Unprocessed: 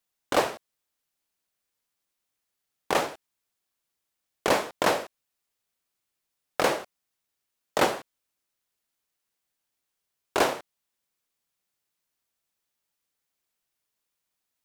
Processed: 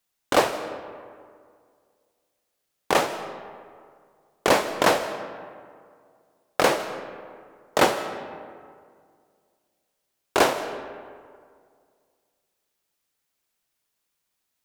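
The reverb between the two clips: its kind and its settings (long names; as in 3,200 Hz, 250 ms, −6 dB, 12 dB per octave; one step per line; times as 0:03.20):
comb and all-pass reverb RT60 2.1 s, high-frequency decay 0.5×, pre-delay 115 ms, DRR 11.5 dB
level +4 dB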